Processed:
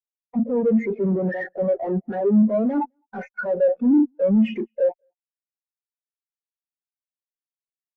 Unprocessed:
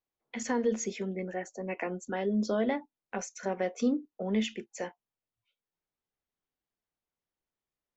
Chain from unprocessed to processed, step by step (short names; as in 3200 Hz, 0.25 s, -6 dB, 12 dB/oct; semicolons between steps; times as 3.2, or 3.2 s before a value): LPF 5300 Hz; notch 2000 Hz, Q 17; reverse; compressor 20:1, threshold -36 dBFS, peak gain reduction 14.5 dB; reverse; sample leveller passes 1; limiter -33 dBFS, peak gain reduction 5.5 dB; LFO low-pass sine 1.6 Hz 540–2300 Hz; fuzz box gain 54 dB, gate -60 dBFS; on a send: echo 0.21 s -18.5 dB; on the sum: spectral expander 2.5:1